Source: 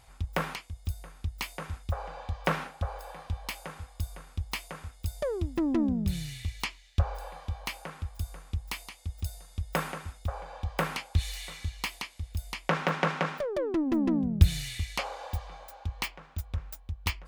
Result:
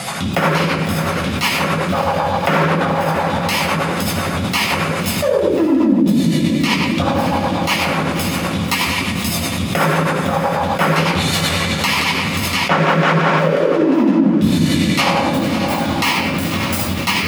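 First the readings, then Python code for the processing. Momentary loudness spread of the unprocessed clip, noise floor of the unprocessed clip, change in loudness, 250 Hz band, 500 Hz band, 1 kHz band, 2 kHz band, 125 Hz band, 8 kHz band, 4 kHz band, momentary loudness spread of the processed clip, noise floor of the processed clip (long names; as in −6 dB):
12 LU, −54 dBFS, +17.0 dB, +17.5 dB, +18.5 dB, +19.5 dB, +19.0 dB, +12.5 dB, +18.5 dB, +20.0 dB, 5 LU, −21 dBFS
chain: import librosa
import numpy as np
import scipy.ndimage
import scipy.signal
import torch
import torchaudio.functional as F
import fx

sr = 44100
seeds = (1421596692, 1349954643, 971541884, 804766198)

p1 = scipy.signal.sosfilt(scipy.signal.butter(4, 160.0, 'highpass', fs=sr, output='sos'), x)
p2 = fx.room_shoebox(p1, sr, seeds[0], volume_m3=710.0, walls='mixed', distance_m=6.8)
p3 = fx.rotary_switch(p2, sr, hz=8.0, then_hz=1.1, switch_at_s=12.58)
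p4 = p3 + fx.echo_diffused(p3, sr, ms=574, feedback_pct=52, wet_db=-14.0, dry=0)
p5 = fx.dynamic_eq(p4, sr, hz=880.0, q=5.0, threshold_db=-44.0, ratio=4.0, max_db=5)
p6 = p5 * (1.0 - 0.51 / 2.0 + 0.51 / 2.0 * np.cos(2.0 * np.pi * 11.0 * (np.arange(len(p5)) / sr)))
y = fx.env_flatten(p6, sr, amount_pct=70)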